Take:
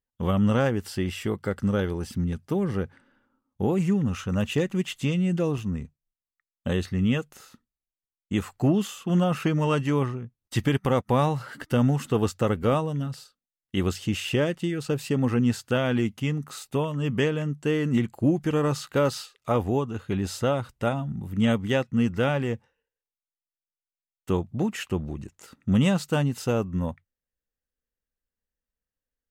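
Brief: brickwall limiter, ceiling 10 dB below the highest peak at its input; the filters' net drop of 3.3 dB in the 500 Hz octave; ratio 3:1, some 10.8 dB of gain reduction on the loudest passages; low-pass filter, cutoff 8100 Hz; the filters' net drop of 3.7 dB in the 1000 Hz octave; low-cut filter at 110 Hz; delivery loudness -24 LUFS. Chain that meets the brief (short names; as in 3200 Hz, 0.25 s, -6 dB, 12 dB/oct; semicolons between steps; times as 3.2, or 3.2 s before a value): HPF 110 Hz; LPF 8100 Hz; bell 500 Hz -3 dB; bell 1000 Hz -4 dB; compressor 3:1, threshold -34 dBFS; gain +16 dB; limiter -14.5 dBFS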